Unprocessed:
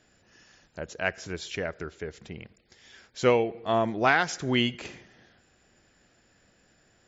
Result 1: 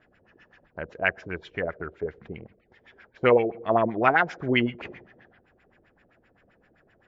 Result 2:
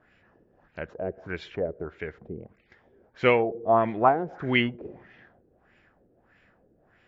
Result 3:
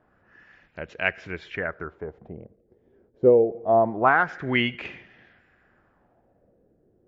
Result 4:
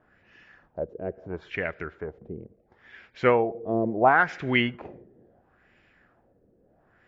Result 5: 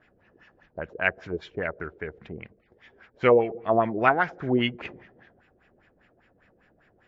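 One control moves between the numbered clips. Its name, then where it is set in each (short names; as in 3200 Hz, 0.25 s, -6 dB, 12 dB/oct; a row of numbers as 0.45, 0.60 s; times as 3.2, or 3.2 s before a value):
LFO low-pass, rate: 7.7, 1.6, 0.25, 0.73, 5 Hz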